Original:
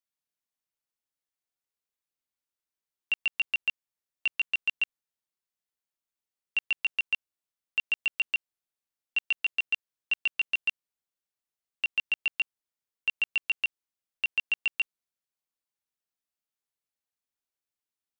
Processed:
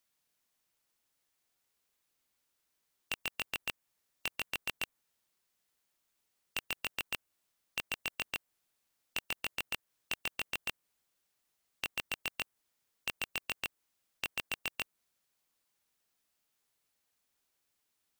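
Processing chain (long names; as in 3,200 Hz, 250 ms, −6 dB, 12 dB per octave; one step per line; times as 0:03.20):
dynamic equaliser 4,300 Hz, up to −5 dB, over −39 dBFS, Q 0.86
in parallel at −10.5 dB: bit reduction 6 bits
on the sum: every bin compressed towards the loudest bin 2 to 1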